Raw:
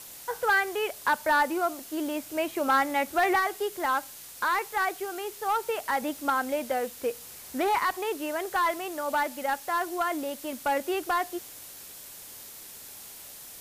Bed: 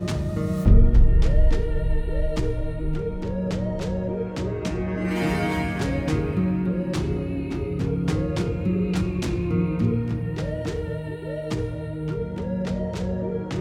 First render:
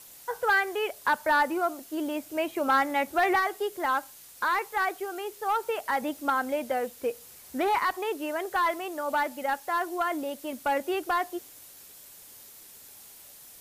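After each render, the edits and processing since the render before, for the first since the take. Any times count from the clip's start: denoiser 6 dB, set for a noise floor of -45 dBFS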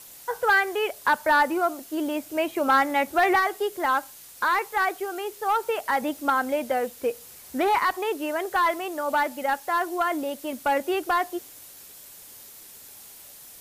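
gain +3.5 dB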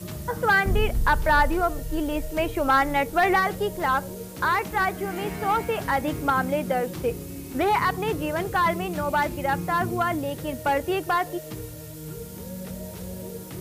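add bed -9.5 dB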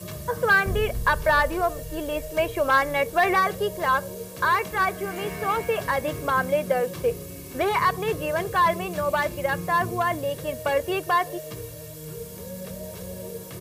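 HPF 120 Hz 6 dB/oct; comb 1.8 ms, depth 55%

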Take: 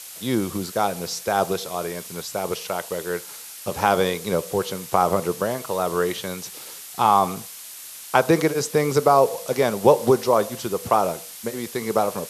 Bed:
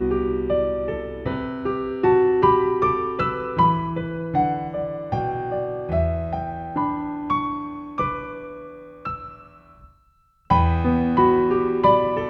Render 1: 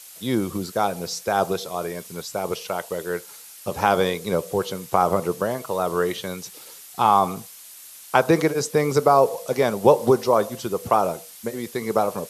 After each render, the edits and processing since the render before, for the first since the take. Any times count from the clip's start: denoiser 6 dB, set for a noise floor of -39 dBFS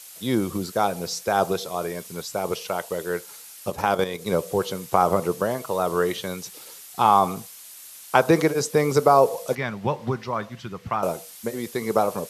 3.7–4.26 level quantiser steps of 10 dB; 9.55–11.03 EQ curve 160 Hz 0 dB, 470 Hz -15 dB, 1200 Hz -4 dB, 1900 Hz +2 dB, 5600 Hz -11 dB, 9600 Hz -21 dB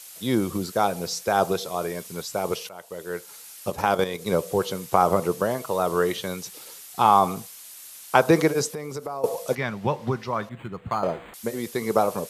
2.69–3.49 fade in, from -18 dB; 8.7–9.24 compressor 3:1, threshold -34 dBFS; 10.49–11.34 decimation joined by straight lines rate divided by 8×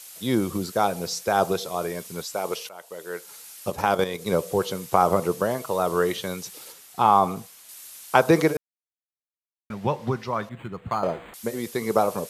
2.24–3.25 HPF 350 Hz 6 dB/oct; 6.72–7.69 high shelf 2800 Hz -6 dB; 8.57–9.7 mute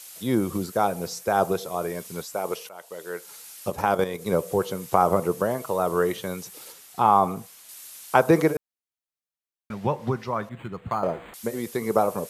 dynamic EQ 4200 Hz, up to -7 dB, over -44 dBFS, Q 0.79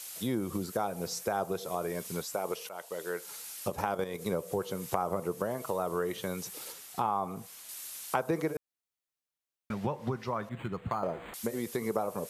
compressor 3:1, threshold -31 dBFS, peak gain reduction 14 dB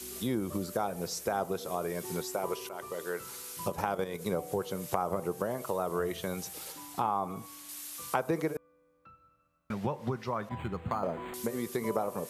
add bed -27 dB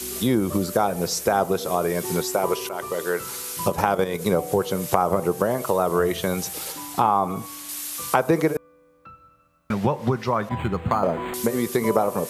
gain +11 dB; limiter -2 dBFS, peak gain reduction 1 dB

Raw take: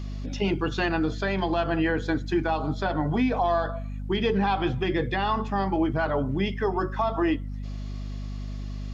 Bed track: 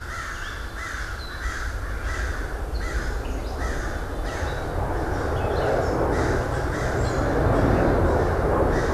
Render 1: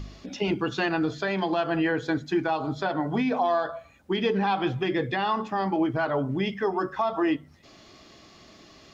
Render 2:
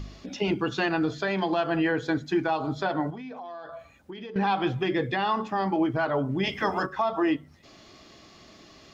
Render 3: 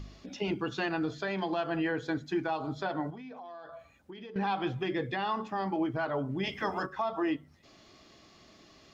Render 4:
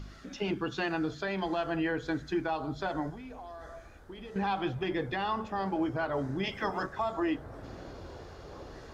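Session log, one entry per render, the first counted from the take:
de-hum 50 Hz, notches 5
3.1–4.36 compressor 12:1, threshold -36 dBFS; 6.43–6.85 spectral limiter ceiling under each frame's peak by 20 dB
gain -6 dB
add bed track -25.5 dB

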